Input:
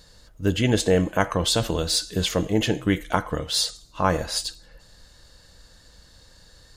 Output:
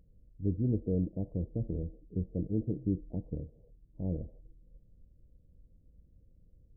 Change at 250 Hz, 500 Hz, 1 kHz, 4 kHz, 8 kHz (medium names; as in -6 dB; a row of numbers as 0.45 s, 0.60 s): -9.0 dB, -16.0 dB, under -35 dB, under -40 dB, under -40 dB